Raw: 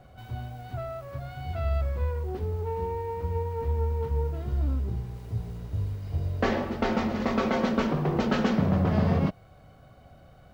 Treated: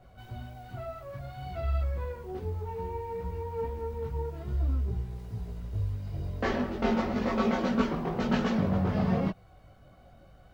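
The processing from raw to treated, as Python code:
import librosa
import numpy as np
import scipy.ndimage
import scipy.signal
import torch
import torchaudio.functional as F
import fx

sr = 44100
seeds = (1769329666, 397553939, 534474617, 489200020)

y = fx.chorus_voices(x, sr, voices=6, hz=0.58, base_ms=19, depth_ms=3.1, mix_pct=50)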